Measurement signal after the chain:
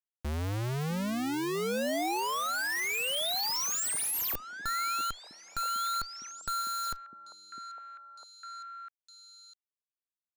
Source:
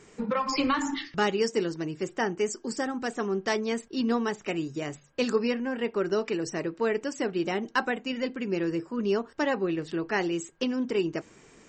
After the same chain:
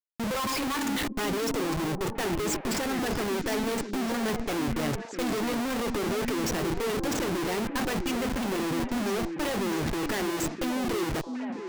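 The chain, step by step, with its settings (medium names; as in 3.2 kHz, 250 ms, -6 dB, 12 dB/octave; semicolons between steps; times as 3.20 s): gate -39 dBFS, range -16 dB; Schmitt trigger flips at -41.5 dBFS; repeats whose band climbs or falls 652 ms, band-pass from 270 Hz, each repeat 1.4 oct, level -3 dB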